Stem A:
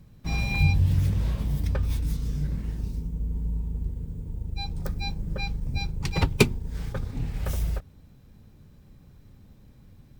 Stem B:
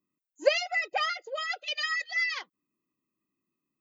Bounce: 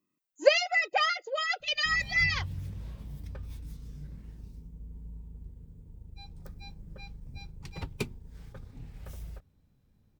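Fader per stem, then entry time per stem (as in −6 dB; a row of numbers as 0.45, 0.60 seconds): −15.0, +2.5 decibels; 1.60, 0.00 seconds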